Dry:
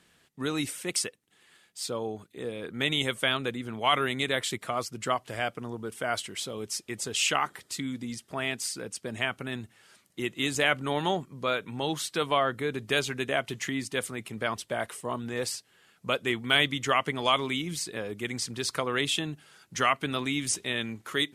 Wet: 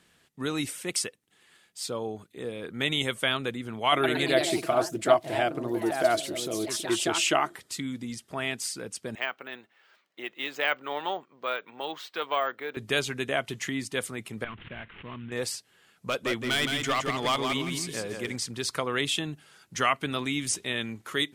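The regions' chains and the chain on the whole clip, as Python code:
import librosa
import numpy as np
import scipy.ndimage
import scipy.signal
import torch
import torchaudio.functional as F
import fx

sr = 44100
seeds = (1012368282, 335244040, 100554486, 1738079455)

y = fx.chain(x, sr, fx.echo_pitch(ms=115, semitones=2, count=3, db_per_echo=-6.0),
    fx.small_body(hz=(340.0, 650.0), ring_ms=85, db=16), at=(3.92, 7.56))
y = fx.chain(y, sr, fx.halfwave_gain(db=-3.0),
    fx.bandpass_edges(low_hz=500.0, high_hz=3300.0),
    fx.resample_bad(factor=2, down='none', up='hold'), at=(9.15, 12.77))
y = fx.chain(y, sr, fx.cvsd(bps=16000),
    fx.peak_eq(hz=650.0, db=-15.0, octaves=1.8),
    fx.pre_swell(db_per_s=75.0), at=(14.44, 15.32))
y = fx.chain(y, sr, fx.clip_hard(threshold_db=-21.5),
    fx.echo_feedback(ms=167, feedback_pct=26, wet_db=-5), at=(16.07, 18.36))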